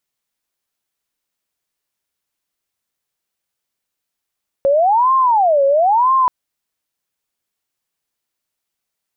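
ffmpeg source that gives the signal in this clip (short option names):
-f lavfi -i "aevalsrc='0.316*sin(2*PI*(804.5*t-255.5/(2*PI*1)*sin(2*PI*1*t)))':d=1.63:s=44100"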